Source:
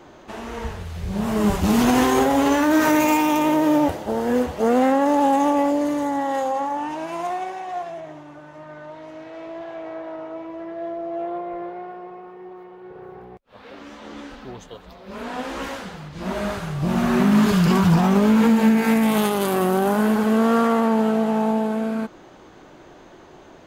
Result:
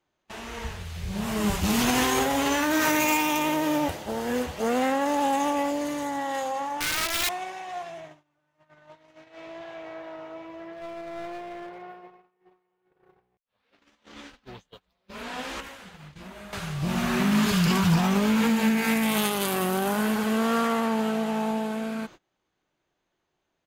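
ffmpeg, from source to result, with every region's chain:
-filter_complex "[0:a]asettb=1/sr,asplit=3[s0][s1][s2];[s0]atrim=end=6.804[s3];[s1]atrim=start=6.8:end=7.29,asetpts=PTS-STARTPTS,afade=t=in:d=0.004:c=qsin,afade=t=out:st=0.486:d=0.004:c=qsin,aecho=1:1:3:0.89,atrim=end_sample=21609,aeval=exprs='(mod(10.6*val(0)+1,2)-1)/10.6':c=same[s4];[s2]atrim=start=7.286[s5];[s3][s4]acrossfade=d=0.004:c1=hsin:c2=qsin[s6];[s6][s5]acrossfade=d=0.004:c1=qsin:c2=hsin,asettb=1/sr,asplit=3[s7][s8][s9];[s7]atrim=end=10.734[s10];[s8]atrim=start=10.73:end=11.82,asetpts=PTS-STARTPTS,afade=t=in:d=0.004:c=qsin,afade=t=out:st=1.086:d=0.004:c=qsin,bandreject=f=47.51:t=h:w=4,bandreject=f=95.02:t=h:w=4,bandreject=f=142.53:t=h:w=4,bandreject=f=190.04:t=h:w=4,bandreject=f=237.55:t=h:w=4,bandreject=f=285.06:t=h:w=4,bandreject=f=332.57:t=h:w=4,bandreject=f=380.08:t=h:w=4,bandreject=f=427.59:t=h:w=4,bandreject=f=475.1:t=h:w=4,bandreject=f=522.61:t=h:w=4,bandreject=f=570.12:t=h:w=4,bandreject=f=617.63:t=h:w=4,bandreject=f=665.14:t=h:w=4,bandreject=f=712.65:t=h:w=4,bandreject=f=760.16:t=h:w=4,bandreject=f=807.67:t=h:w=4,bandreject=f=855.18:t=h:w=4,bandreject=f=902.69:t=h:w=4,bandreject=f=950.2:t=h:w=4,bandreject=f=997.71:t=h:w=4,bandreject=f=1045.22:t=h:w=4,bandreject=f=1092.73:t=h:w=4,bandreject=f=1140.24:t=h:w=4,bandreject=f=1187.75:t=h:w=4,bandreject=f=1235.26:t=h:w=4,bandreject=f=1282.77:t=h:w=4,bandreject=f=1330.28:t=h:w=4,bandreject=f=1377.79:t=h:w=4,bandreject=f=1425.3:t=h:w=4,bandreject=f=1472.81:t=h:w=4,aeval=exprs='clip(val(0),-1,0.0251)':c=same[s11];[s9]atrim=start=11.816[s12];[s10][s11]acrossfade=d=0.004:c1=hsin:c2=qsin[s13];[s13][s12]acrossfade=d=0.004:c1=qsin:c2=hsin,asettb=1/sr,asplit=3[s14][s15][s16];[s14]atrim=end=15.604[s17];[s15]atrim=start=15.6:end=16.53,asetpts=PTS-STARTPTS,afade=t=in:d=0.004:c=qsin,afade=t=out:st=0.926:d=0.004:c=qsin,equalizer=f=5000:t=o:w=1.1:g=-4.5,acompressor=threshold=0.0251:ratio=12:attack=3.2:release=140:knee=1:detection=peak[s18];[s16]atrim=start=16.526[s19];[s17][s18]acrossfade=d=0.004:c1=hsin:c2=qsin[s20];[s20][s19]acrossfade=d=0.004:c1=qsin:c2=hsin,agate=range=0.0447:threshold=0.0158:ratio=16:detection=peak,firequalizer=gain_entry='entry(160,0);entry(260,-4);entry(2400,6)':delay=0.05:min_phase=1,volume=0.596"

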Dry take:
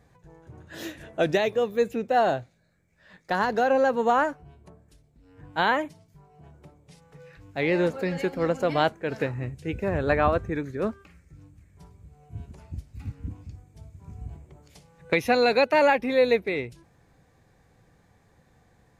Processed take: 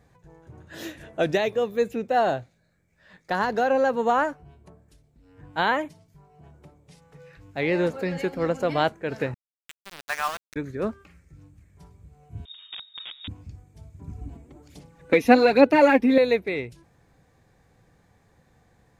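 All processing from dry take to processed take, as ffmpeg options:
-filter_complex "[0:a]asettb=1/sr,asplit=3[s0][s1][s2];[s0]atrim=end=9.344[s3];[s1]atrim=start=9.34:end=10.56,asetpts=PTS-STARTPTS,afade=t=in:d=0.004:c=qsin,afade=t=out:st=1.216:d=0.004:c=qsin,highpass=f=900:w=0.5412,highpass=f=900:w=1.3066,aeval=exprs='val(0)*gte(abs(val(0)),0.0355)':c=same[s4];[s2]atrim=start=10.556[s5];[s3][s4]acrossfade=d=0.004:c1=hsin:c2=qsin[s6];[s6][s5]acrossfade=d=0.004:c1=qsin:c2=hsin,asettb=1/sr,asplit=3[s7][s8][s9];[s7]atrim=end=12.454[s10];[s8]atrim=start=12.45:end=13.28,asetpts=PTS-STARTPTS,afade=t=in:d=0.004:c=qsin,afade=t=out:st=0.826:d=0.004:c=qsin,aeval=exprs='(mod(37.6*val(0)+1,2)-1)/37.6':c=same,lowpass=f=3200:t=q:w=0.5098,lowpass=f=3200:t=q:w=0.6013,lowpass=f=3200:t=q:w=0.9,lowpass=f=3200:t=q:w=2.563,afreqshift=-3800[s11];[s9]atrim=start=13.276[s12];[s10][s11]acrossfade=d=0.004:c1=hsin:c2=qsin[s13];[s13][s12]acrossfade=d=0.004:c1=qsin:c2=hsin,asettb=1/sr,asplit=3[s14][s15][s16];[s14]atrim=end=13.994[s17];[s15]atrim=start=13.99:end=16.18,asetpts=PTS-STARTPTS,afade=t=in:d=0.004:c=qsin,afade=t=out:st=2.186:d=0.004:c=qsin,acrossover=split=3200[s18][s19];[s19]acompressor=threshold=0.0126:ratio=4:attack=1:release=60[s20];[s18][s20]amix=inputs=2:normalize=0,equalizer=f=290:w=2.4:g=10.5,aphaser=in_gain=1:out_gain=1:delay=4.5:decay=0.5:speed=1.2:type=sinusoidal[s21];[s16]atrim=start=16.176[s22];[s17][s21]acrossfade=d=0.004:c1=hsin:c2=qsin[s23];[s23][s22]acrossfade=d=0.004:c1=qsin:c2=hsin"

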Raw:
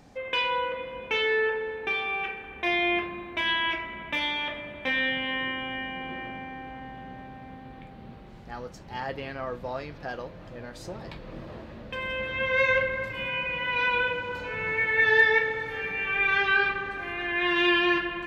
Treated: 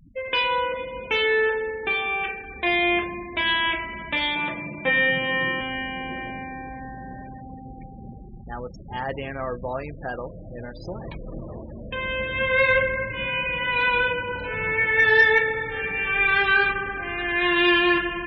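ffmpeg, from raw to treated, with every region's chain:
-filter_complex "[0:a]asettb=1/sr,asplit=3[s0][s1][s2];[s0]atrim=end=4.354[s3];[s1]atrim=start=4.35:end=5.61,asetpts=PTS-STARTPTS,afade=t=in:d=0.004:c=qsin,afade=t=out:st=1.256:d=0.004:c=qsin,highpass=160,lowpass=4000,aemphasis=mode=reproduction:type=bsi,aecho=1:1:6:0.77,atrim=end_sample=55566[s4];[s2]atrim=start=5.606[s5];[s3][s4]acrossfade=d=0.004:c1=hsin:c2=qsin[s6];[s6][s5]acrossfade=d=0.004:c1=qsin:c2=hsin,acontrast=85,lowshelf=f=72:g=6.5,afftfilt=real='re*gte(hypot(re,im),0.0282)':imag='im*gte(hypot(re,im),0.0282)':win_size=1024:overlap=0.75,volume=0.708"

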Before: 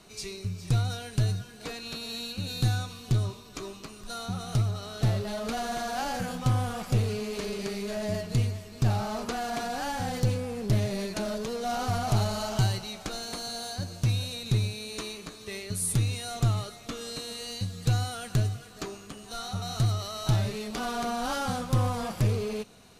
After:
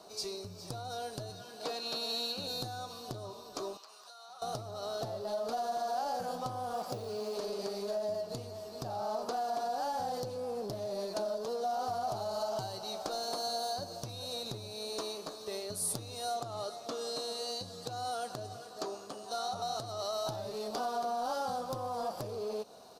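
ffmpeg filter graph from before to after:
-filter_complex "[0:a]asettb=1/sr,asplit=3[s0][s1][s2];[s0]atrim=end=1.304[s3];[s1]atrim=start=1.3:end=2.47,asetpts=PTS-STARTPTS,afade=t=in:d=0.004:c=qsin,afade=t=out:st=1.166:d=0.004:c=qsin,highpass=110,equalizer=f=2800:t=o:w=1.3:g=5[s4];[s2]atrim=start=2.466[s5];[s3][s4]acrossfade=d=0.004:c1=hsin:c2=qsin[s6];[s6][s5]acrossfade=d=0.004:c1=qsin:c2=hsin,asettb=1/sr,asplit=3[s7][s8][s9];[s7]atrim=end=3.774[s10];[s8]atrim=start=3.77:end=4.42,asetpts=PTS-STARTPTS,afade=t=in:d=0.004:c=qsin,afade=t=out:st=0.646:d=0.004:c=qsin,highpass=1100,highshelf=f=7800:g=-7.5,acompressor=threshold=0.00398:ratio=12:attack=3.2:release=140:knee=1:detection=peak[s11];[s9]atrim=start=4.416[s12];[s10][s11]acrossfade=d=0.004:c1=hsin:c2=qsin[s13];[s13][s12]acrossfade=d=0.004:c1=qsin:c2=hsin,asettb=1/sr,asplit=3[s14][s15][s16];[s14]atrim=end=6.744[s17];[s15]atrim=start=6.74:end=7.37,asetpts=PTS-STARTPTS,afade=t=in:d=0.004:c=qsin,afade=t=out:st=0.626:d=0.004:c=qsin,highpass=46,acrusher=bits=9:mode=log:mix=0:aa=0.000001[s18];[s16]atrim=start=7.366[s19];[s17][s18]acrossfade=d=0.004:c1=hsin:c2=qsin[s20];[s20][s19]acrossfade=d=0.004:c1=qsin:c2=hsin,asettb=1/sr,asplit=3[s21][s22][s23];[s21]atrim=end=16.374[s24];[s22]atrim=start=16.37:end=20.13,asetpts=PTS-STARTPTS,afade=t=in:d=0.004:c=qsin,afade=t=out:st=3.756:d=0.004:c=qsin,lowpass=12000,acompressor=threshold=0.0398:ratio=6:attack=3.2:release=140:knee=1:detection=peak,lowshelf=f=64:g=-10.5[s25];[s23]atrim=start=20.126[s26];[s24][s25]acrossfade=d=0.004:c1=hsin:c2=qsin[s27];[s27][s26]acrossfade=d=0.004:c1=qsin:c2=hsin,firequalizer=gain_entry='entry(180,0);entry(620,10);entry(2100,-16);entry(4700,-5);entry(6900,-16);entry(11000,-20)':delay=0.05:min_phase=1,acompressor=threshold=0.0282:ratio=5,aemphasis=mode=production:type=riaa"

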